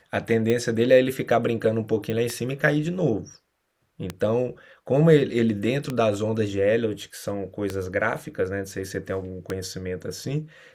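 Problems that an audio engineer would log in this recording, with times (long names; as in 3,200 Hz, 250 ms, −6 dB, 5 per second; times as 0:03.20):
scratch tick 33 1/3 rpm −12 dBFS
0:02.10: click −18 dBFS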